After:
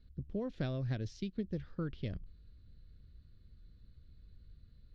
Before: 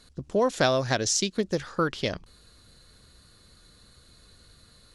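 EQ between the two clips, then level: air absorption 290 m; passive tone stack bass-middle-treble 10-0-1; bell 7700 Hz -4.5 dB 1.3 oct; +9.0 dB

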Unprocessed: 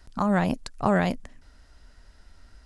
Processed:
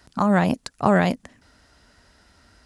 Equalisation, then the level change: HPF 98 Hz 12 dB/oct; +4.5 dB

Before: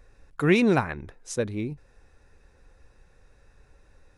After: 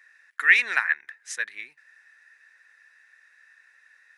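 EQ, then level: resonant high-pass 1800 Hz, resonance Q 7.7; 0.0 dB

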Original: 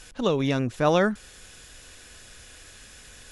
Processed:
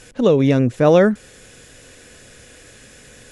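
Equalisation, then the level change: ten-band EQ 125 Hz +10 dB, 250 Hz +8 dB, 500 Hz +11 dB, 2000 Hz +6 dB, 8000 Hz +5 dB; -2.0 dB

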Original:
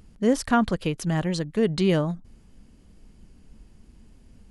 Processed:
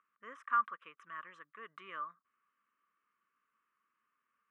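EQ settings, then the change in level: ladder band-pass 1200 Hz, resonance 85%; fixed phaser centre 1900 Hz, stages 4; 0.0 dB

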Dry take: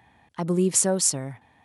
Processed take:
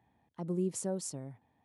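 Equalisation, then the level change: low shelf 77 Hz -8 dB; bell 1700 Hz -9 dB 2.4 oct; high shelf 3200 Hz -11 dB; -8.5 dB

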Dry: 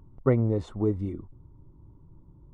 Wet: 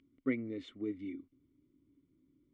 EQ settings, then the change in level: vowel filter i; bell 190 Hz -8.5 dB 2.2 oct; low shelf 470 Hz -10.5 dB; +13.5 dB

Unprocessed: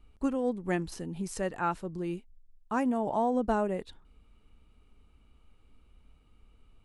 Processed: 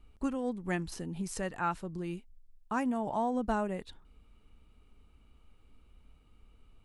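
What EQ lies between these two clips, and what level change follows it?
dynamic EQ 440 Hz, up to -6 dB, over -40 dBFS, Q 0.84; 0.0 dB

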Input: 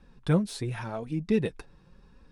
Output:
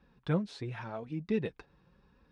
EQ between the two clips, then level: HPF 49 Hz; air absorption 140 m; low shelf 480 Hz -4 dB; -3.0 dB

